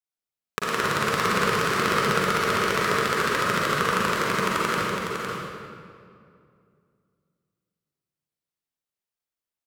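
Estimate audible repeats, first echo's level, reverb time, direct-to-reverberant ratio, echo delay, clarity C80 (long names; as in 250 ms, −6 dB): 1, −6.0 dB, 2.4 s, −8.0 dB, 507 ms, −3.0 dB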